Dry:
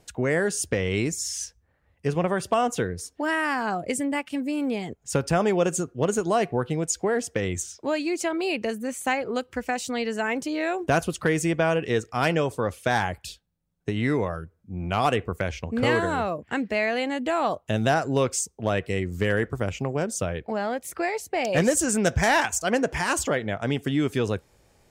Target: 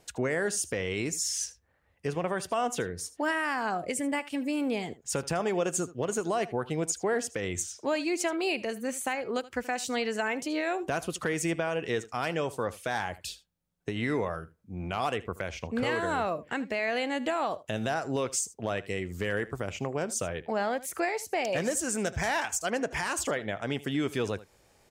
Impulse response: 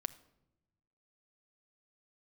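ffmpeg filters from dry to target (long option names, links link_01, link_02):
-af "lowshelf=frequency=270:gain=-7,alimiter=limit=-19dB:level=0:latency=1:release=219,aecho=1:1:78:0.126"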